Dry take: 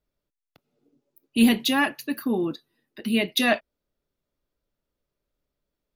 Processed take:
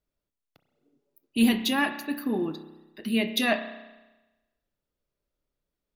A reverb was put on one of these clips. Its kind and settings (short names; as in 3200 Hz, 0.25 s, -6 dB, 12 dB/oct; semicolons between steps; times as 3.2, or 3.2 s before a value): spring tank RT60 1.1 s, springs 31 ms, chirp 40 ms, DRR 9 dB; gain -3.5 dB